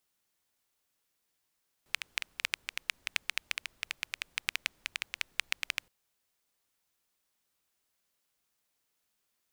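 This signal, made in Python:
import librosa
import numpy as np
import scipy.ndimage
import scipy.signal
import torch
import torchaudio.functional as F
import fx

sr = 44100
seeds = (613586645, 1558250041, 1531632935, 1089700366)

y = fx.rain(sr, seeds[0], length_s=4.02, drops_per_s=9.0, hz=2400.0, bed_db=-29)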